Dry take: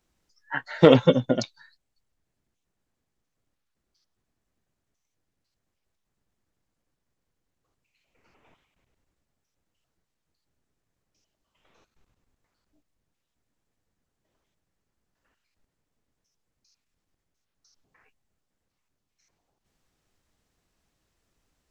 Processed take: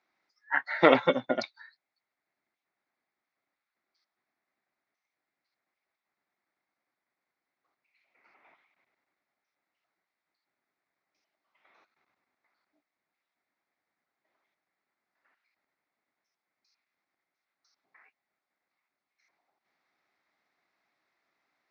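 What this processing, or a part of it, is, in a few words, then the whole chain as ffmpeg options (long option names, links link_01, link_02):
phone earpiece: -af "highpass=410,equalizer=frequency=470:width_type=q:width=4:gain=-8,equalizer=frequency=750:width_type=q:width=4:gain=3,equalizer=frequency=1300:width_type=q:width=4:gain=3,equalizer=frequency=2100:width_type=q:width=4:gain=9,equalizer=frequency=3000:width_type=q:width=4:gain=-10,lowpass=frequency=4400:width=0.5412,lowpass=frequency=4400:width=1.3066"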